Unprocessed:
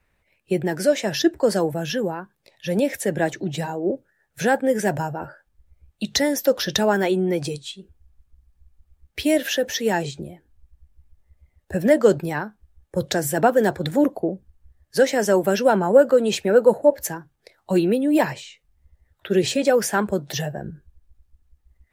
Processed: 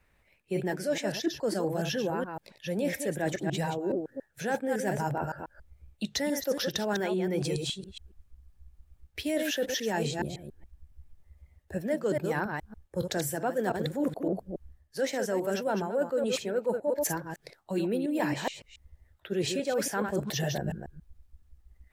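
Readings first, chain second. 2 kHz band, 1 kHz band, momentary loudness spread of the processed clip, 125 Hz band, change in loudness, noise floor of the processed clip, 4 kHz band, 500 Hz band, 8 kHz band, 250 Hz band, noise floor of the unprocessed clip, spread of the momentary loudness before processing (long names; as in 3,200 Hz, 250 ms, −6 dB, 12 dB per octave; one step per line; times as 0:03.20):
−8.5 dB, −9.0 dB, 10 LU, −6.0 dB, −10.0 dB, −67 dBFS, −7.0 dB, −10.5 dB, −7.0 dB, −9.0 dB, −69 dBFS, 16 LU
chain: delay that plays each chunk backwards 140 ms, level −8 dB
reversed playback
downward compressor 6 to 1, threshold −27 dBFS, peak gain reduction 17 dB
reversed playback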